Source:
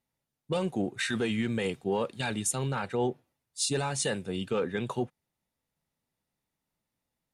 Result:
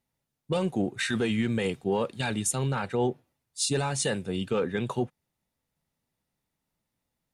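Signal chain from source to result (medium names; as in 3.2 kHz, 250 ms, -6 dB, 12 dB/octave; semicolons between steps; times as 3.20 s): bass shelf 210 Hz +3 dB; trim +1.5 dB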